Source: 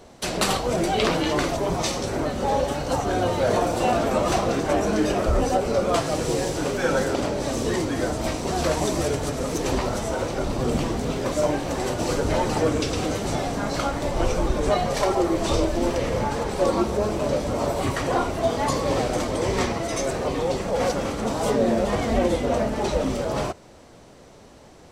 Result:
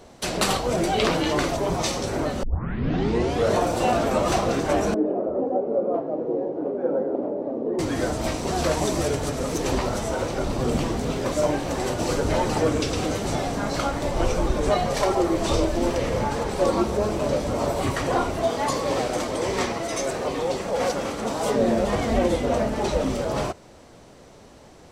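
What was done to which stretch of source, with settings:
2.43 tape start 1.13 s
4.94–7.79 Butterworth band-pass 400 Hz, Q 0.91
18.44–21.56 low shelf 160 Hz -9 dB

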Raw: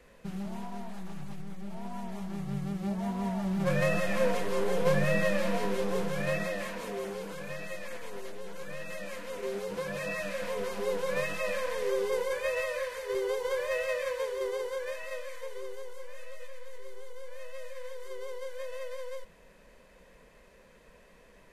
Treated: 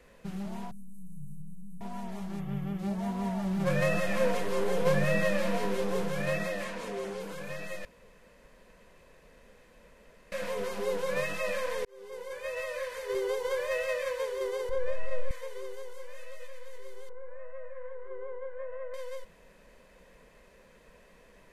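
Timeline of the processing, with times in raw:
0.71–1.81 elliptic band-stop 160–9000 Hz, stop band 50 dB
2.4–2.79 spectral gain 3600–11000 Hz -11 dB
6.64–7.2 LPF 10000 Hz
7.85–10.32 room tone
11.85–13.04 fade in
14.69–15.31 tilt -3.5 dB/oct
17.09–18.94 inverse Chebyshev low-pass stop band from 9000 Hz, stop band 80 dB

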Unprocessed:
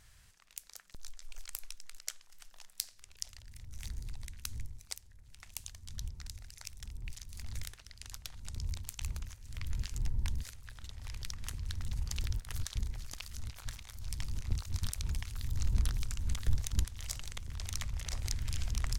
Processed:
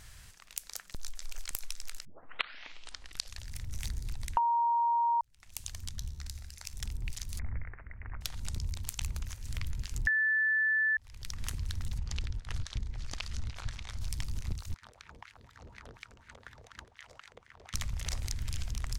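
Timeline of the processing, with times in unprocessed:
0.59–1.32 echo throw 0.56 s, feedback 85%, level -8.5 dB
2.05 tape start 1.41 s
4.37–5.21 bleep 938 Hz -6.5 dBFS
5.89–6.74 resonator 71 Hz, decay 1.1 s
7.39–8.21 steep low-pass 2200 Hz 72 dB/oct
10.07–10.97 bleep 1750 Hz -8 dBFS
11.98–14.01 air absorption 88 m
14.74–17.74 wah 4.1 Hz 440–2000 Hz, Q 3.3
whole clip: compressor 6:1, threshold -40 dBFS; gain +9 dB

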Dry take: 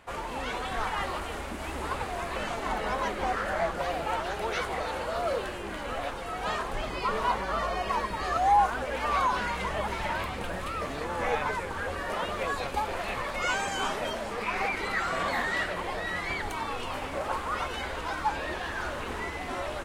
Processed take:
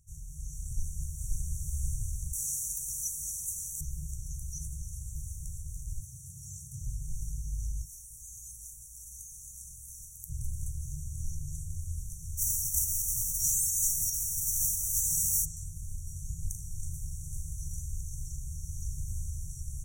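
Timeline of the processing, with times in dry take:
0.65–1.58 echo throw 0.53 s, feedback 55%, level -1 dB
2.33–3.81 RIAA curve recording
6.01–6.82 HPF 87 Hz 24 dB/oct
7.85–10.3 pre-emphasis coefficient 0.9
12.37–15.44 spectral whitening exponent 0.3
16.5–19.46 flutter echo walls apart 6.6 m, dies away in 0.32 s
whole clip: FFT band-reject 170–5600 Hz; bell 170 Hz -3 dB 1.1 oct; AGC gain up to 5.5 dB; gain +1 dB

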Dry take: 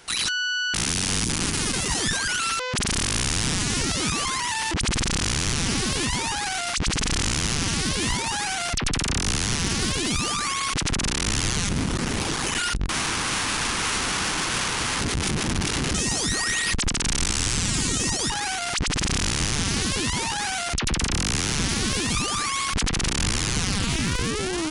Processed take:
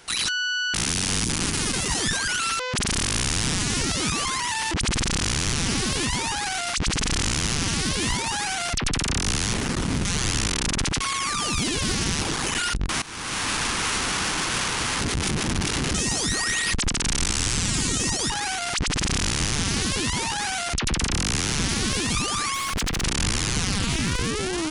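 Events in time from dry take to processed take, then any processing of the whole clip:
9.53–12.21 reverse
13.02–13.48 fade in, from -19 dB
22.54–23.02 hard clip -22 dBFS

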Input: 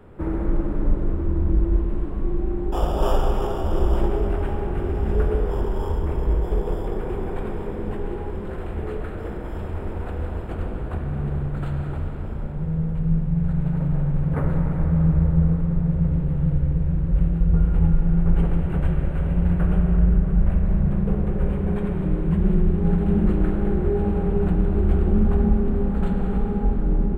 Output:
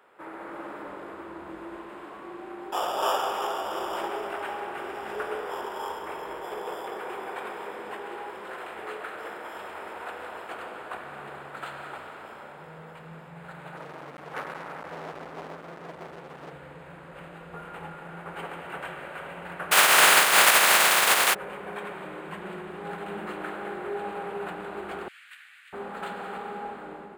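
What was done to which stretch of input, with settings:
13.75–16.53 hard clip -22 dBFS
19.71–21.33 spectral contrast lowered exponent 0.34
25.08–25.73 steep high-pass 1800 Hz
whole clip: HPF 920 Hz 12 dB/oct; AGC gain up to 5.5 dB

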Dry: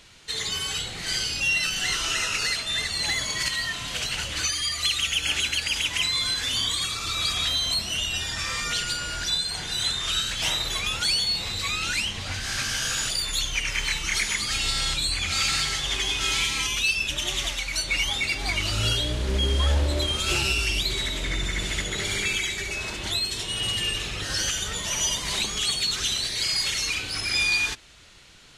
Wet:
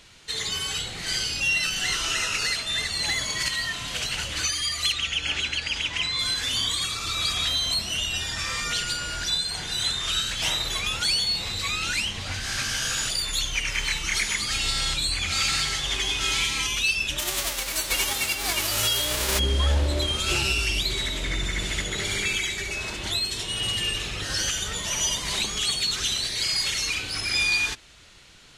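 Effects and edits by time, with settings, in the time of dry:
4.92–6.19 air absorption 86 m
17.18–19.38 spectral whitening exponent 0.3

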